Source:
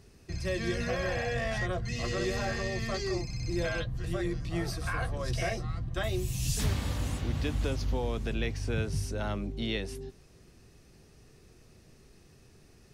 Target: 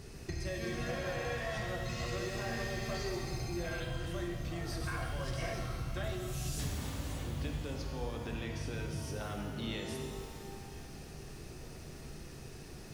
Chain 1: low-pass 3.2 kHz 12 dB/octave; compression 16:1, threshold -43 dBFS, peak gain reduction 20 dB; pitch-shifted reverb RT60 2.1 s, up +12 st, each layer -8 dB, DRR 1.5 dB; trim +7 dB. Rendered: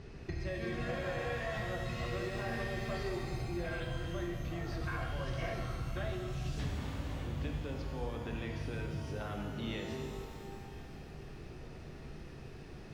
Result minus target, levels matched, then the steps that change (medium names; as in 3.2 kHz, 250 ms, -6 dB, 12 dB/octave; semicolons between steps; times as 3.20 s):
4 kHz band -3.0 dB
remove: low-pass 3.2 kHz 12 dB/octave